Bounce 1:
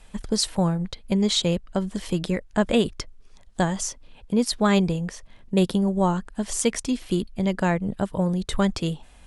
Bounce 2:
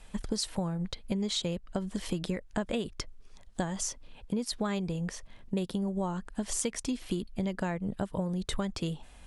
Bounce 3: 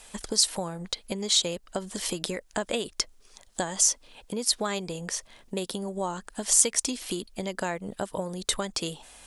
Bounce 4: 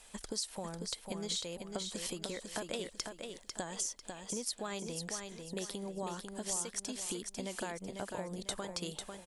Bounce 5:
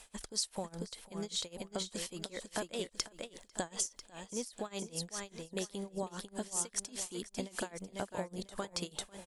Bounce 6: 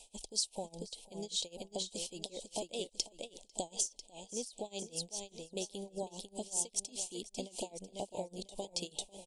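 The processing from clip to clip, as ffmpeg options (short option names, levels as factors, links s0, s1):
-af "acompressor=threshold=0.0501:ratio=10,volume=0.794"
-af "bass=f=250:g=-13,treble=f=4000:g=9,volume=1.78"
-filter_complex "[0:a]acompressor=threshold=0.0398:ratio=4,asplit=2[s0][s1];[s1]aecho=0:1:497|994|1491|1988:0.531|0.175|0.0578|0.0191[s2];[s0][s2]amix=inputs=2:normalize=0,volume=0.422"
-af "tremolo=f=5:d=0.93,volume=1.5"
-af "asuperstop=centerf=1500:order=8:qfactor=0.83,equalizer=f=89:w=0.39:g=-8.5,aresample=22050,aresample=44100,volume=1.12"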